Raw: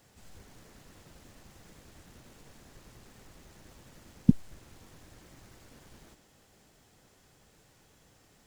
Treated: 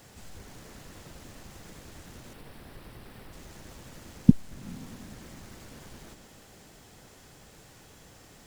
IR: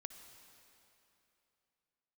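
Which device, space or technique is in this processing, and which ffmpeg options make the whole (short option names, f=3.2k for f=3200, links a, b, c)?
ducked reverb: -filter_complex "[0:a]asplit=3[a][b][c];[1:a]atrim=start_sample=2205[d];[b][d]afir=irnorm=-1:irlink=0[e];[c]apad=whole_len=373389[f];[e][f]sidechaincompress=threshold=-57dB:ratio=8:attack=16:release=153,volume=4dB[g];[a][g]amix=inputs=2:normalize=0,asettb=1/sr,asplit=3[h][i][j];[h]atrim=end=2.334[k];[i]atrim=start=2.33:end=3.33,asetpts=PTS-STARTPTS,afade=t=in:d=0.004:c=qsin,afade=t=out:st=0.996:d=0.004:c=qsin,equalizer=f=6.7k:t=o:w=0.52:g=-14.5[l];[j]atrim=start=3.326[m];[k][l]acrossfade=d=0.004:c1=hsin:c2=qsin[n];[n][m]acrossfade=d=0.004:c1=qsin:c2=hsin,volume=4dB"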